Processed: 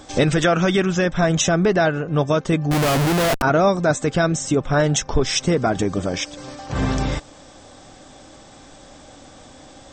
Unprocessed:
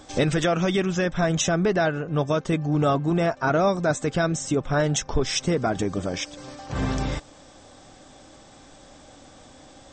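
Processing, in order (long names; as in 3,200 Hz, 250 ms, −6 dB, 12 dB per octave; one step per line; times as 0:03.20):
0:00.44–0:00.93: parametric band 1,500 Hz +5.5 dB 0.37 octaves
0:02.71–0:03.42: comparator with hysteresis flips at −38 dBFS
level +4.5 dB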